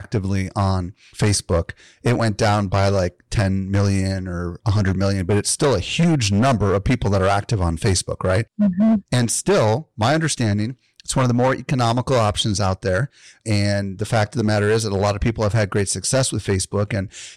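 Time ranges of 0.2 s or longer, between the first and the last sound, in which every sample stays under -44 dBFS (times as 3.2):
10.74–11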